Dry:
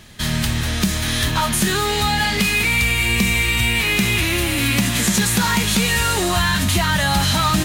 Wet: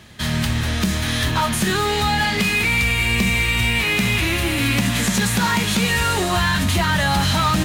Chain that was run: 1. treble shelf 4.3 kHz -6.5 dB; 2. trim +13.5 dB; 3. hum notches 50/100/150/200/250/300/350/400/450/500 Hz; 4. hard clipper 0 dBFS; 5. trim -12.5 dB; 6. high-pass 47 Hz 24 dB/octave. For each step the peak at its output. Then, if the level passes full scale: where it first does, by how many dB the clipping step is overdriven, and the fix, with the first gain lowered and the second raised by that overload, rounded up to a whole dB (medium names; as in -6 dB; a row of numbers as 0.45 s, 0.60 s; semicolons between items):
-6.0 dBFS, +7.5 dBFS, +6.5 dBFS, 0.0 dBFS, -12.5 dBFS, -6.5 dBFS; step 2, 6.5 dB; step 2 +6.5 dB, step 5 -5.5 dB